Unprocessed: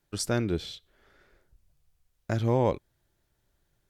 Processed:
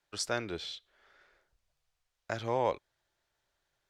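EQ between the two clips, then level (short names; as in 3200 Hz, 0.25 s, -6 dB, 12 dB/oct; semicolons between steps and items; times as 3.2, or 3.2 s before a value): three-band isolator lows -15 dB, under 510 Hz, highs -13 dB, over 7400 Hz; 0.0 dB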